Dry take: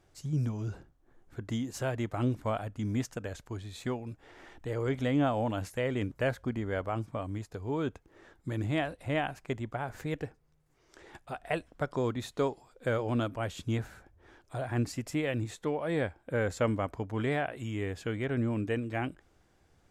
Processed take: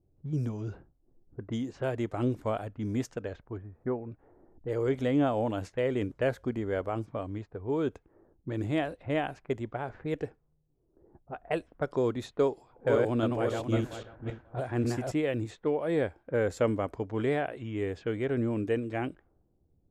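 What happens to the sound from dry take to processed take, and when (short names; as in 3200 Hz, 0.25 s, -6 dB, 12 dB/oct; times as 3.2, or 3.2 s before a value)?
3.58–4.12 LPF 1800 Hz 24 dB/oct
12.42–15.12 regenerating reverse delay 0.269 s, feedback 41%, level -2 dB
whole clip: low-pass opened by the level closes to 1000 Hz, open at -30.5 dBFS; dynamic EQ 410 Hz, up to +7 dB, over -45 dBFS, Q 1.2; low-pass opened by the level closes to 340 Hz, open at -26.5 dBFS; gain -2 dB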